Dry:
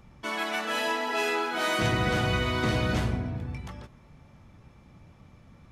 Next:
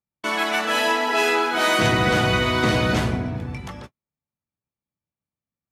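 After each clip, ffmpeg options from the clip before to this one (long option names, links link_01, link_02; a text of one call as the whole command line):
ffmpeg -i in.wav -af "highpass=frequency=130:poles=1,agate=range=-46dB:threshold=-46dB:ratio=16:detection=peak,volume=8dB" out.wav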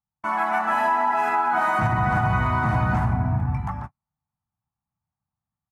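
ffmpeg -i in.wav -af "firequalizer=gain_entry='entry(120,0);entry(470,-24);entry(770,3);entry(3300,-27);entry(8800,-19)':delay=0.05:min_phase=1,dynaudnorm=framelen=370:gausssize=3:maxgain=4.5dB,alimiter=limit=-16.5dB:level=0:latency=1:release=132,volume=3.5dB" out.wav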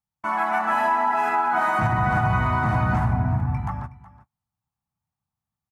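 ffmpeg -i in.wav -af "aecho=1:1:369:0.119" out.wav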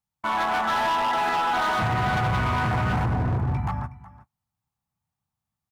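ffmpeg -i in.wav -af "asoftclip=type=hard:threshold=-22.5dB,volume=1.5dB" out.wav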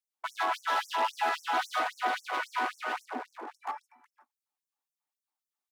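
ffmpeg -i in.wav -af "aphaser=in_gain=1:out_gain=1:delay=3.1:decay=0.26:speed=0.97:type=triangular,afftfilt=real='re*gte(b*sr/1024,220*pow(5600/220,0.5+0.5*sin(2*PI*3.7*pts/sr)))':imag='im*gte(b*sr/1024,220*pow(5600/220,0.5+0.5*sin(2*PI*3.7*pts/sr)))':win_size=1024:overlap=0.75,volume=-4dB" out.wav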